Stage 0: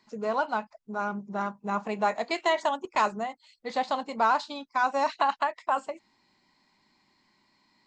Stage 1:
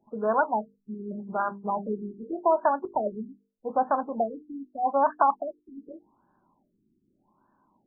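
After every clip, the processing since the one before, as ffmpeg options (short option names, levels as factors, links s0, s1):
-af "bandreject=f=50:t=h:w=6,bandreject=f=100:t=h:w=6,bandreject=f=150:t=h:w=6,bandreject=f=200:t=h:w=6,bandreject=f=250:t=h:w=6,bandreject=f=300:t=h:w=6,bandreject=f=350:t=h:w=6,bandreject=f=400:t=h:w=6,bandreject=f=450:t=h:w=6,afftfilt=real='re*lt(b*sr/1024,390*pow(1800/390,0.5+0.5*sin(2*PI*0.83*pts/sr)))':imag='im*lt(b*sr/1024,390*pow(1800/390,0.5+0.5*sin(2*PI*0.83*pts/sr)))':win_size=1024:overlap=0.75,volume=1.58"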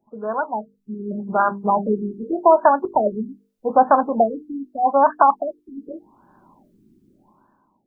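-af "dynaudnorm=f=190:g=9:m=6.68,volume=0.891"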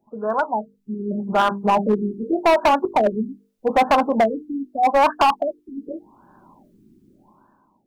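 -af "volume=5.01,asoftclip=hard,volume=0.2,volume=1.33"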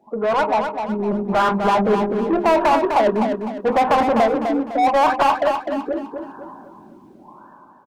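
-filter_complex "[0:a]asplit=2[s0][s1];[s1]highpass=f=720:p=1,volume=12.6,asoftclip=type=tanh:threshold=0.266[s2];[s0][s2]amix=inputs=2:normalize=0,lowpass=f=1800:p=1,volume=0.501,asplit=2[s3][s4];[s4]aecho=0:1:253|506|759|1012:0.473|0.175|0.0648|0.024[s5];[s3][s5]amix=inputs=2:normalize=0"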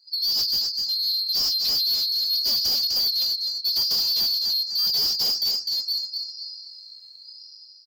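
-filter_complex "[0:a]afftfilt=real='real(if(lt(b,736),b+184*(1-2*mod(floor(b/184),2)),b),0)':imag='imag(if(lt(b,736),b+184*(1-2*mod(floor(b/184),2)),b),0)':win_size=2048:overlap=0.75,acrossover=split=260|640|1400[s0][s1][s2][s3];[s3]asoftclip=type=tanh:threshold=0.0944[s4];[s0][s1][s2][s4]amix=inputs=4:normalize=0"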